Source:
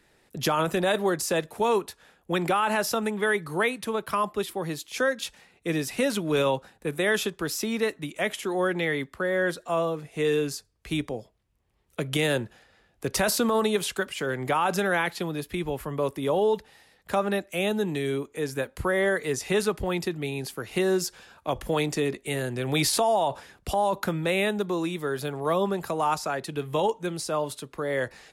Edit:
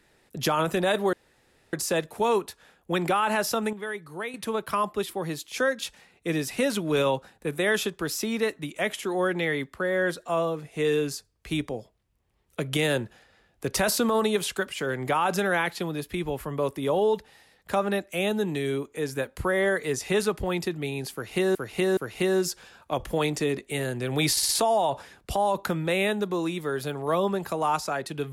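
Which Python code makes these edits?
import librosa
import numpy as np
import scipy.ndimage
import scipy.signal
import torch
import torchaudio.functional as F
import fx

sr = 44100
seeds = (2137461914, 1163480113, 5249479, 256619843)

y = fx.edit(x, sr, fx.insert_room_tone(at_s=1.13, length_s=0.6),
    fx.clip_gain(start_s=3.13, length_s=0.61, db=-9.0),
    fx.repeat(start_s=20.53, length_s=0.42, count=3),
    fx.stutter(start_s=22.87, slice_s=0.06, count=4), tone=tone)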